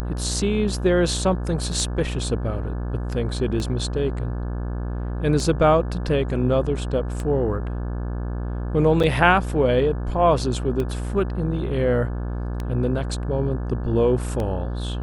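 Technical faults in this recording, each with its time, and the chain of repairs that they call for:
mains buzz 60 Hz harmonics 29 −27 dBFS
scratch tick 33 1/3 rpm −15 dBFS
0:09.03–0:09.04: drop-out 6.3 ms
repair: click removal
hum removal 60 Hz, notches 29
repair the gap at 0:09.03, 6.3 ms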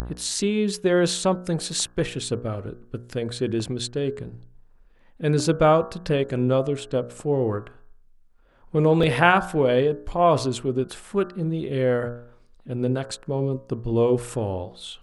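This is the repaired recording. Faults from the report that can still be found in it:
scratch tick 33 1/3 rpm

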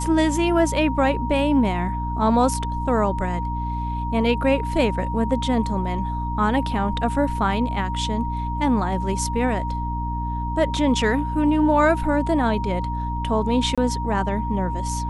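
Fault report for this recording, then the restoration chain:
mains hum 60 Hz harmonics 5 −27 dBFS
whistle 940 Hz −28 dBFS
0:13.75–0:13.78: drop-out 26 ms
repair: notch filter 940 Hz, Q 30
hum removal 60 Hz, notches 5
repair the gap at 0:13.75, 26 ms

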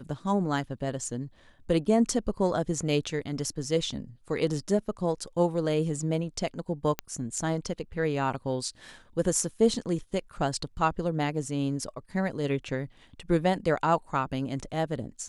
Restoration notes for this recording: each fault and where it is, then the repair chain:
0:06.99: click −13 dBFS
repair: click removal

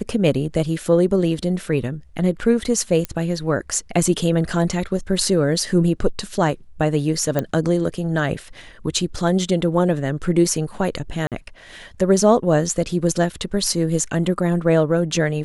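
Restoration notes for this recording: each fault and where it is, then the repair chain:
0:03.05: click −10 dBFS
0:07.39: click −8 dBFS
0:11.27–0:11.32: drop-out 47 ms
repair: click removal
repair the gap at 0:11.27, 47 ms

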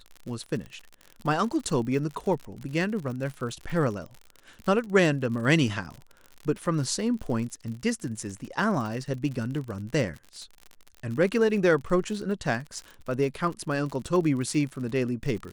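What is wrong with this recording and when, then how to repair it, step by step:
surface crackle 59 per second −34 dBFS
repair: click removal

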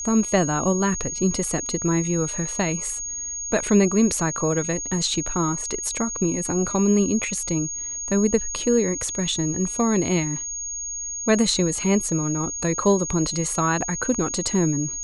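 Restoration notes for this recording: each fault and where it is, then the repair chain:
whistle 6,600 Hz −28 dBFS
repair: notch filter 6,600 Hz, Q 30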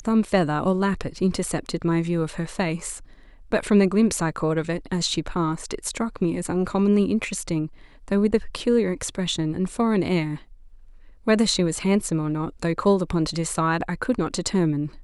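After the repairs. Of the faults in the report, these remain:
none of them is left

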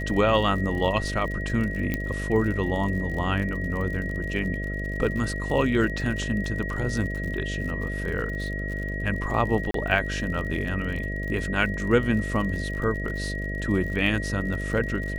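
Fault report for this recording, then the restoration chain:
mains buzz 50 Hz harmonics 13 −31 dBFS
surface crackle 59 per second −33 dBFS
whistle 1,900 Hz −33 dBFS
0:01.94: click −13 dBFS
0:09.71–0:09.74: drop-out 33 ms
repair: click removal
notch filter 1,900 Hz, Q 30
hum removal 50 Hz, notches 13
repair the gap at 0:09.71, 33 ms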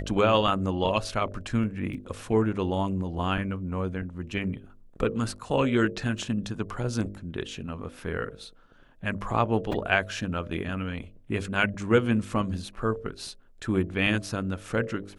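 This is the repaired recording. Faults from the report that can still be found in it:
0:01.94: click

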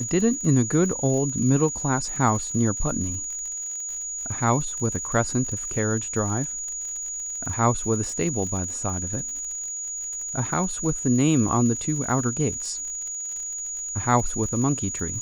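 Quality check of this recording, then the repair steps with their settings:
surface crackle 59 per second −32 dBFS
whistle 6,800 Hz −29 dBFS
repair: click removal
notch filter 6,800 Hz, Q 30

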